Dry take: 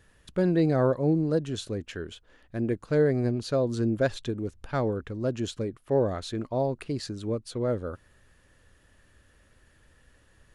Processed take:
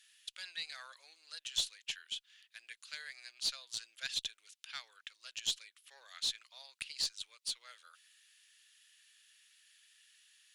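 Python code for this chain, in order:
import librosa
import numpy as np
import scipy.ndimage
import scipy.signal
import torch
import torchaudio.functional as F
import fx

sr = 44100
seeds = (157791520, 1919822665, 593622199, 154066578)

y = fx.ladder_highpass(x, sr, hz=2400.0, resonance_pct=30)
y = fx.tube_stage(y, sr, drive_db=33.0, bias=0.25)
y = y * librosa.db_to_amplitude(11.0)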